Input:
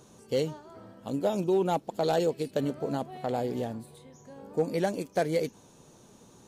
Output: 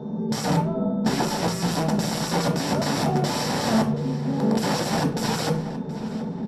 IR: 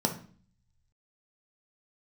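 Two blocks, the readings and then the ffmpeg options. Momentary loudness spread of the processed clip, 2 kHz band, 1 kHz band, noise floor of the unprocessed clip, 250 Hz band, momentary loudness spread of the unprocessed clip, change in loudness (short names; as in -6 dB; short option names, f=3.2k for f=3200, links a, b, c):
5 LU, +11.0 dB, +8.0 dB, -57 dBFS, +10.5 dB, 17 LU, +6.0 dB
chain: -filter_complex "[0:a]bandreject=f=161.2:t=h:w=4,bandreject=f=322.4:t=h:w=4,bandreject=f=483.6:t=h:w=4,bandreject=f=644.8:t=h:w=4,bandreject=f=806:t=h:w=4,bandreject=f=967.2:t=h:w=4,bandreject=f=1.1284k:t=h:w=4,bandreject=f=1.2896k:t=h:w=4,bandreject=f=1.4508k:t=h:w=4,bandreject=f=1.612k:t=h:w=4,bandreject=f=1.7732k:t=h:w=4,bandreject=f=1.9344k:t=h:w=4,bandreject=f=2.0956k:t=h:w=4,bandreject=f=2.2568k:t=h:w=4,bandreject=f=2.418k:t=h:w=4,bandreject=f=2.5792k:t=h:w=4,bandreject=f=2.7404k:t=h:w=4,bandreject=f=2.9016k:t=h:w=4,bandreject=f=3.0628k:t=h:w=4,acrossover=split=3000[a][b];[b]acompressor=threshold=-54dB:ratio=4:attack=1:release=60[c];[a][c]amix=inputs=2:normalize=0,aecho=1:1:4.6:0.63,aeval=exprs='val(0)+0.00158*sin(2*PI*3600*n/s)':c=same,adynamicsmooth=sensitivity=1:basefreq=1.2k,aresample=16000,asoftclip=type=tanh:threshold=-30.5dB,aresample=44100,aeval=exprs='val(0)+0.000316*(sin(2*PI*60*n/s)+sin(2*PI*2*60*n/s)/2+sin(2*PI*3*60*n/s)/3+sin(2*PI*4*60*n/s)/4+sin(2*PI*5*60*n/s)/5)':c=same,aeval=exprs='(mod(70.8*val(0)+1,2)-1)/70.8':c=same,asplit=2[d][e];[e]adelay=725,lowpass=f=3.8k:p=1,volume=-13.5dB,asplit=2[f][g];[g]adelay=725,lowpass=f=3.8k:p=1,volume=0.43,asplit=2[h][i];[i]adelay=725,lowpass=f=3.8k:p=1,volume=0.43,asplit=2[j][k];[k]adelay=725,lowpass=f=3.8k:p=1,volume=0.43[l];[d][f][h][j][l]amix=inputs=5:normalize=0[m];[1:a]atrim=start_sample=2205,asetrate=42777,aresample=44100[n];[m][n]afir=irnorm=-1:irlink=0,volume=8dB" -ar 32000 -c:a libvorbis -b:a 48k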